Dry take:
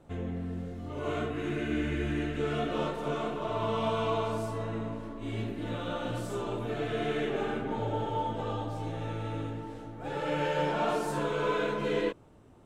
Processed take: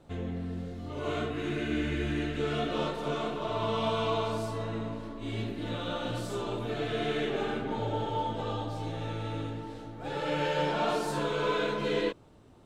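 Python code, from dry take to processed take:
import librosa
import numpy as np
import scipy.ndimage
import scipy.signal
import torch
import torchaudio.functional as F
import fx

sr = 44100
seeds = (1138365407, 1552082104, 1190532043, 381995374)

y = fx.peak_eq(x, sr, hz=4200.0, db=7.0, octaves=0.85)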